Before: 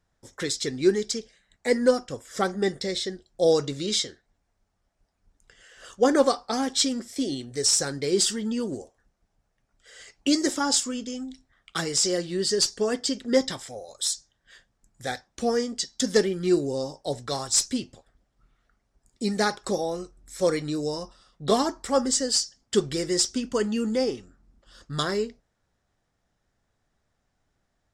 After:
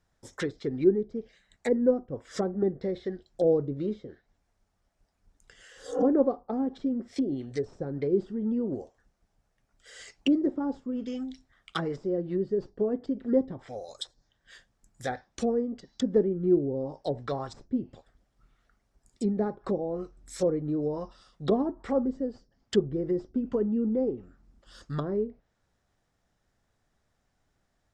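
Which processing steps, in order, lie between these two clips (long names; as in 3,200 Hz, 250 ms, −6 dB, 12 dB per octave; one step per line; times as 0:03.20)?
treble cut that deepens with the level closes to 480 Hz, closed at −23.5 dBFS
healed spectral selection 0:05.76–0:06.01, 260–3,200 Hz both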